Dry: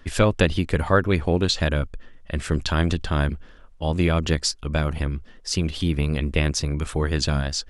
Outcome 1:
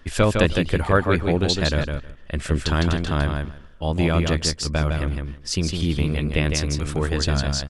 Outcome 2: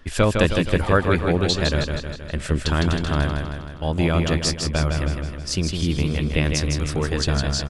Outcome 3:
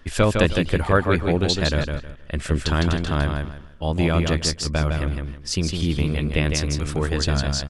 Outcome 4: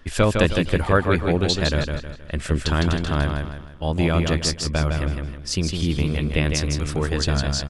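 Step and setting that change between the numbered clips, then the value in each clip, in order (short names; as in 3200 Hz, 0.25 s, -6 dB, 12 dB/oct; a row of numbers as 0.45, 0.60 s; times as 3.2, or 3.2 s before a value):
feedback echo, feedback: 15, 56, 25, 38%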